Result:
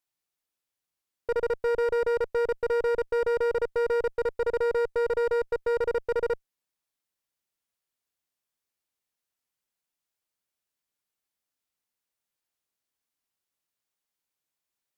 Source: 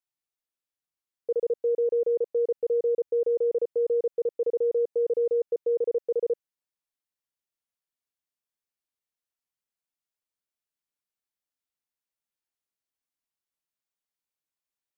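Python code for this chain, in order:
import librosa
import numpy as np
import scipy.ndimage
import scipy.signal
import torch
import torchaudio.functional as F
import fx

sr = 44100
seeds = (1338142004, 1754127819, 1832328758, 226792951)

y = fx.highpass(x, sr, hz=230.0, slope=12, at=(4.14, 5.79))
y = fx.clip_asym(y, sr, top_db=-32.0, bottom_db=-24.5)
y = y * librosa.db_to_amplitude(4.5)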